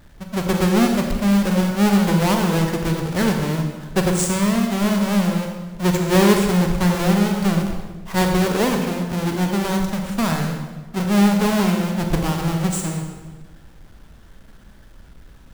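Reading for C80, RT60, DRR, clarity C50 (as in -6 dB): 5.5 dB, 1.3 s, 2.5 dB, 4.0 dB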